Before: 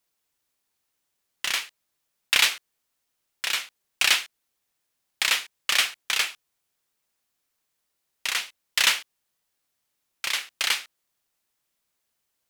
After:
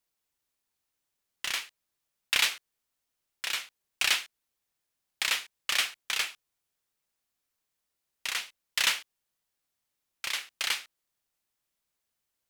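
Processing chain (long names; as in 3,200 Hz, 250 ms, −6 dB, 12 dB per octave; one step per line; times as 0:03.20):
low-shelf EQ 92 Hz +5 dB
level −5.5 dB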